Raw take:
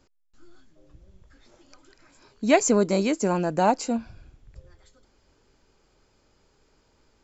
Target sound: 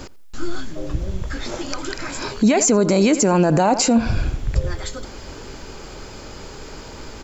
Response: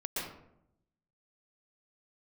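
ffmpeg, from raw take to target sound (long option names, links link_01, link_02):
-filter_complex "[0:a]acompressor=threshold=-32dB:ratio=6,asplit=2[link_01][link_02];[link_02]adelay=85,lowpass=frequency=4200:poles=1,volume=-20dB,asplit=2[link_03][link_04];[link_04]adelay=85,lowpass=frequency=4200:poles=1,volume=0.25[link_05];[link_01][link_03][link_05]amix=inputs=3:normalize=0,alimiter=level_in=35dB:limit=-1dB:release=50:level=0:latency=1,volume=-7dB"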